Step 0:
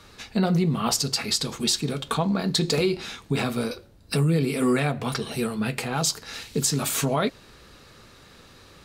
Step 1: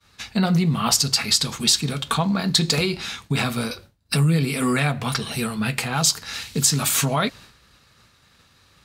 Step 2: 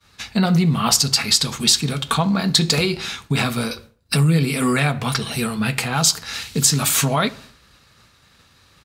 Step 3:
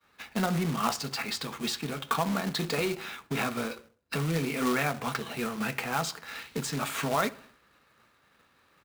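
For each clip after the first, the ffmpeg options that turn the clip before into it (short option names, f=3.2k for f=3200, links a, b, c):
-af "highpass=50,agate=range=-33dB:threshold=-42dB:ratio=3:detection=peak,equalizer=f=400:t=o:w=1.6:g=-9.5,volume=6dB"
-filter_complex "[0:a]asplit=2[a][b];[b]adelay=66,lowpass=f=2.1k:p=1,volume=-19dB,asplit=2[c][d];[d]adelay=66,lowpass=f=2.1k:p=1,volume=0.49,asplit=2[e][f];[f]adelay=66,lowpass=f=2.1k:p=1,volume=0.49,asplit=2[g][h];[h]adelay=66,lowpass=f=2.1k:p=1,volume=0.49[i];[a][c][e][g][i]amix=inputs=5:normalize=0,volume=2.5dB"
-filter_complex "[0:a]acrossover=split=220 2700:gain=0.224 1 0.158[a][b][c];[a][b][c]amix=inputs=3:normalize=0,acrusher=bits=2:mode=log:mix=0:aa=0.000001,bandreject=f=50:t=h:w=6,bandreject=f=100:t=h:w=6,volume=-6.5dB"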